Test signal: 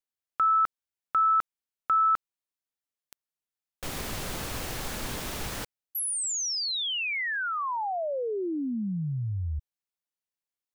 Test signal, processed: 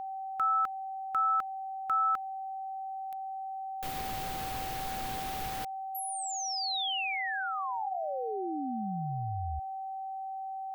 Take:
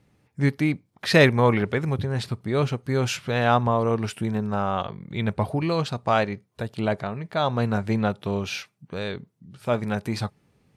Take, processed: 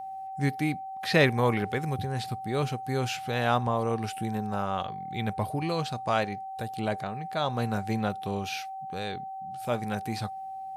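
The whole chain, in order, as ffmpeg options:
-filter_complex "[0:a]aemphasis=mode=production:type=50fm,aeval=exprs='val(0)+0.0316*sin(2*PI*770*n/s)':c=same,acrossover=split=4300[a][b];[b]acompressor=threshold=-37dB:ratio=4:attack=1:release=60[c];[a][c]amix=inputs=2:normalize=0,volume=-5.5dB"

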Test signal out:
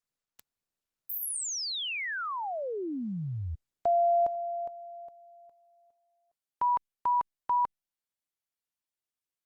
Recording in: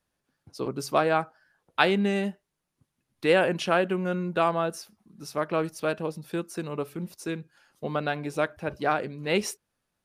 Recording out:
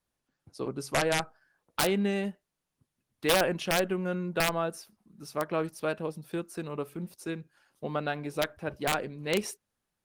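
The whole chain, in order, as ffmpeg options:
-af "aeval=exprs='(mod(4.47*val(0)+1,2)-1)/4.47':c=same,volume=-3dB" -ar 48000 -c:a libopus -b:a 24k

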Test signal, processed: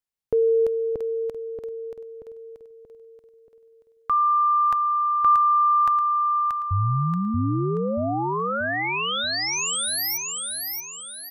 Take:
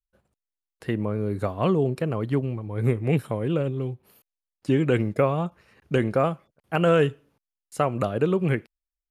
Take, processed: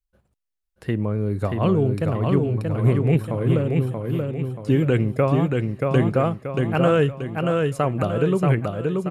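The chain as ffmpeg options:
-filter_complex "[0:a]lowshelf=f=140:g=8.5,asplit=2[a][b];[b]aecho=0:1:631|1262|1893|2524|3155|3786:0.668|0.294|0.129|0.0569|0.0251|0.011[c];[a][c]amix=inputs=2:normalize=0"

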